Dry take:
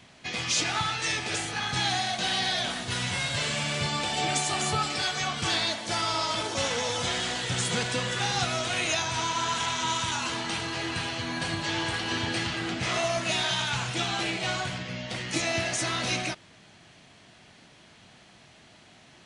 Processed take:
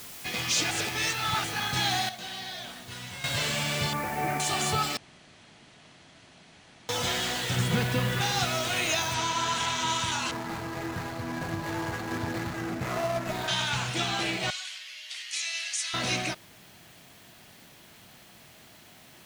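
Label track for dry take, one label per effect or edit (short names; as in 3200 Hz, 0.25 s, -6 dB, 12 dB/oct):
0.710000	1.440000	reverse
2.090000	3.240000	gain -10.5 dB
3.930000	4.400000	steep low-pass 2300 Hz 48 dB/oct
4.970000	6.890000	room tone
7.560000	8.210000	tone controls bass +8 dB, treble -9 dB
9.140000	9.140000	noise floor step -44 dB -58 dB
10.310000	13.480000	median filter over 15 samples
14.500000	15.940000	Butterworth band-pass 5900 Hz, Q 0.63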